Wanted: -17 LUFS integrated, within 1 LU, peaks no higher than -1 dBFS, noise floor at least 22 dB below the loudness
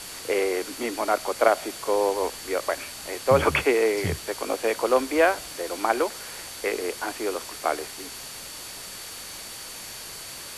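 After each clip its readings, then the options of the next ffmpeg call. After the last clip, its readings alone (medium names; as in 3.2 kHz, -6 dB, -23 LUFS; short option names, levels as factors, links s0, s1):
steady tone 4.5 kHz; tone level -45 dBFS; noise floor -39 dBFS; noise floor target -49 dBFS; loudness -26.5 LUFS; peak level -4.5 dBFS; loudness target -17.0 LUFS
-> -af "bandreject=f=4500:w=30"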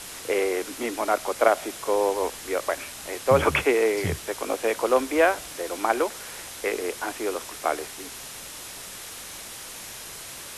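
steady tone not found; noise floor -40 dBFS; noise floor target -48 dBFS
-> -af "afftdn=nr=8:nf=-40"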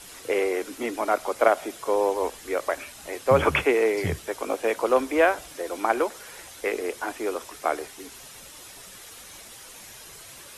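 noise floor -45 dBFS; noise floor target -48 dBFS
-> -af "afftdn=nr=6:nf=-45"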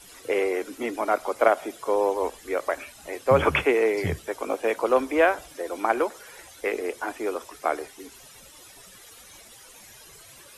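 noise floor -49 dBFS; loudness -25.5 LUFS; peak level -4.5 dBFS; loudness target -17.0 LUFS
-> -af "volume=2.66,alimiter=limit=0.891:level=0:latency=1"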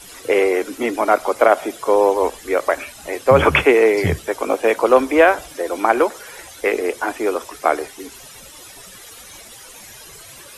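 loudness -17.5 LUFS; peak level -1.0 dBFS; noise floor -41 dBFS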